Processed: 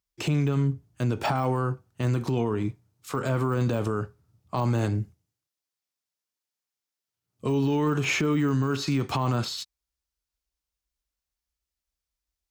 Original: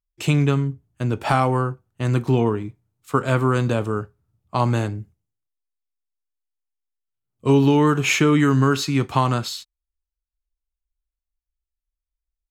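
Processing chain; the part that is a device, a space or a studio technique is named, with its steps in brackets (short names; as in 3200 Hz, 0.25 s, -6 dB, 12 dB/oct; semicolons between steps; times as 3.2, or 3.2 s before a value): broadcast voice chain (HPF 70 Hz 12 dB/oct; de-esser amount 100%; compressor, threshold -23 dBFS, peak gain reduction 10.5 dB; bell 5300 Hz +5 dB 0.84 oct; limiter -22 dBFS, peak gain reduction 10.5 dB); gain +5 dB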